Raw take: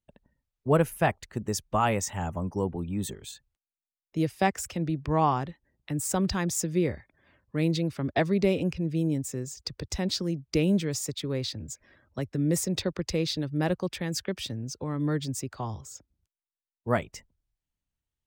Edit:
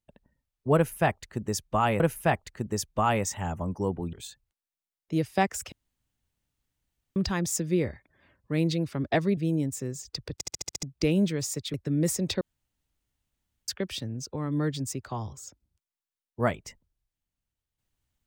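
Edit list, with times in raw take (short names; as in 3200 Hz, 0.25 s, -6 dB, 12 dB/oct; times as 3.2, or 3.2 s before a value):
0.76–2 loop, 2 plays
2.89–3.17 cut
4.76–6.2 room tone
8.41–8.89 cut
9.86 stutter in place 0.07 s, 7 plays
11.26–12.22 cut
12.89–14.16 room tone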